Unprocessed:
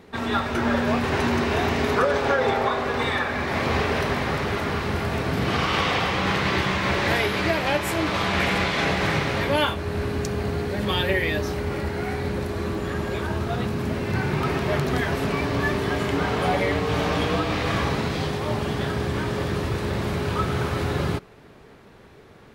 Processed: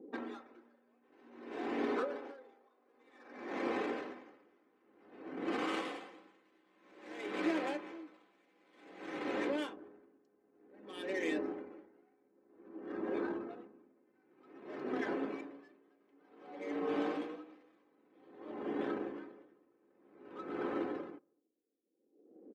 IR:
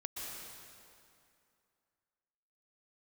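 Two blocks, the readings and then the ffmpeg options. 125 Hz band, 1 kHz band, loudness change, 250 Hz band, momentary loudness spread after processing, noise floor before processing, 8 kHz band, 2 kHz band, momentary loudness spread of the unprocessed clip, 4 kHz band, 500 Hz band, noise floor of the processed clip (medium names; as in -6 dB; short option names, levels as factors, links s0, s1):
-36.5 dB, -20.0 dB, -15.5 dB, -14.0 dB, 19 LU, -48 dBFS, -25.0 dB, -21.0 dB, 6 LU, -24.0 dB, -16.0 dB, -74 dBFS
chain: -filter_complex "[0:a]adynamicsmooth=sensitivity=4.5:basefreq=510,aecho=1:1:3.9:0.47,acompressor=threshold=0.0224:ratio=2.5,highpass=f=330:t=q:w=4.1,afftdn=nr=15:nf=-48,asplit=2[s0][s1];[s1]adelay=231,lowpass=f=960:p=1,volume=0.106,asplit=2[s2][s3];[s3]adelay=231,lowpass=f=960:p=1,volume=0.32,asplit=2[s4][s5];[s5]adelay=231,lowpass=f=960:p=1,volume=0.32[s6];[s0][s2][s4][s6]amix=inputs=4:normalize=0,aeval=exprs='val(0)*pow(10,-36*(0.5-0.5*cos(2*PI*0.53*n/s))/20)':c=same,volume=0.473"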